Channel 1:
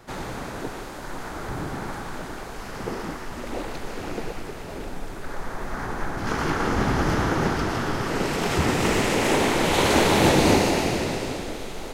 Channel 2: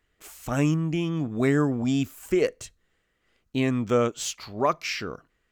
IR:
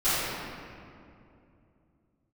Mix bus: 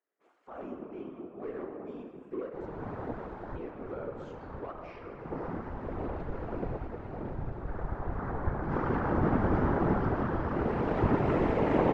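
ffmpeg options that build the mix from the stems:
-filter_complex "[0:a]adelay=2450,volume=2.5dB[link_01];[1:a]highpass=frequency=350:width=0.5412,highpass=frequency=350:width=1.3066,asoftclip=type=hard:threshold=-25.5dB,volume=-5.5dB,asplit=3[link_02][link_03][link_04];[link_03]volume=-16dB[link_05];[link_04]apad=whole_len=634459[link_06];[link_01][link_06]sidechaincompress=threshold=-45dB:ratio=8:attack=42:release=487[link_07];[2:a]atrim=start_sample=2205[link_08];[link_05][link_08]afir=irnorm=-1:irlink=0[link_09];[link_07][link_02][link_09]amix=inputs=3:normalize=0,lowpass=1100,afftfilt=real='hypot(re,im)*cos(2*PI*random(0))':imag='hypot(re,im)*sin(2*PI*random(1))':win_size=512:overlap=0.75"

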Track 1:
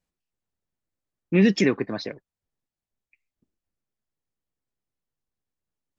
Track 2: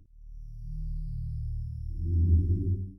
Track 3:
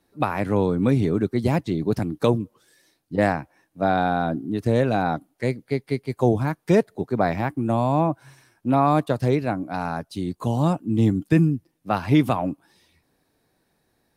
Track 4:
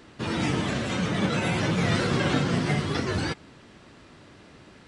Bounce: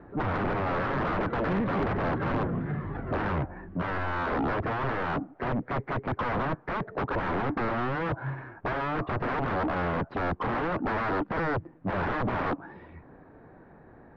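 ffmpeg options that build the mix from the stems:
ffmpeg -i stem1.wav -i stem2.wav -i stem3.wav -i stem4.wav -filter_complex "[0:a]adelay=150,volume=-6dB[link_01];[1:a]aecho=1:1:5:0.81,adelay=1000,volume=-5dB[link_02];[2:a]acompressor=threshold=-20dB:ratio=12,aeval=exprs='0.133*sin(PI/2*7.94*val(0)/0.133)':channel_layout=same,volume=-4dB,asplit=2[link_03][link_04];[3:a]aphaser=in_gain=1:out_gain=1:delay=2.8:decay=0.44:speed=0.41:type=triangular,volume=-7dB[link_05];[link_04]apad=whole_len=176048[link_06];[link_02][link_06]sidechaincompress=threshold=-34dB:ratio=8:attack=16:release=1290[link_07];[link_01][link_07][link_03][link_05]amix=inputs=4:normalize=0,lowpass=frequency=1600:width=0.5412,lowpass=frequency=1600:width=1.3066,asoftclip=type=tanh:threshold=-23.5dB" out.wav

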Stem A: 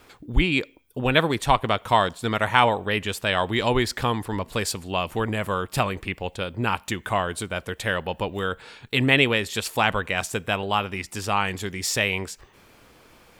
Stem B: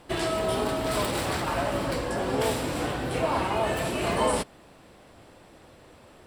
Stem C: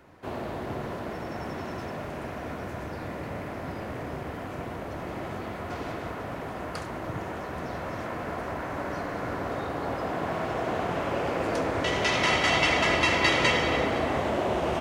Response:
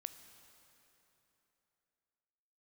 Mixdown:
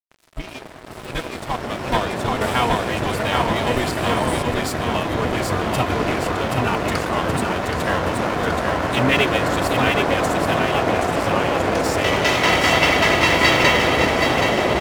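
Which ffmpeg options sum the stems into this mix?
-filter_complex "[0:a]asplit=2[link_01][link_02];[link_02]adelay=3.1,afreqshift=-2.8[link_03];[link_01][link_03]amix=inputs=2:normalize=1,volume=-7dB,asplit=2[link_04][link_05];[link_05]volume=-3.5dB[link_06];[1:a]volume=-10dB,asplit=2[link_07][link_08];[link_08]volume=-9dB[link_09];[2:a]highshelf=frequency=12000:gain=-10,adelay=200,volume=2dB,asplit=2[link_10][link_11];[link_11]volume=-6dB[link_12];[3:a]atrim=start_sample=2205[link_13];[link_09][link_13]afir=irnorm=-1:irlink=0[link_14];[link_06][link_12]amix=inputs=2:normalize=0,aecho=0:1:775|1550|2325|3100|3875|4650|5425|6200|6975:1|0.58|0.336|0.195|0.113|0.0656|0.0381|0.0221|0.0128[link_15];[link_04][link_07][link_10][link_14][link_15]amix=inputs=5:normalize=0,dynaudnorm=framelen=270:gausssize=13:maxgain=11.5dB,aeval=exprs='sgn(val(0))*max(abs(val(0))-0.0355,0)':channel_layout=same"

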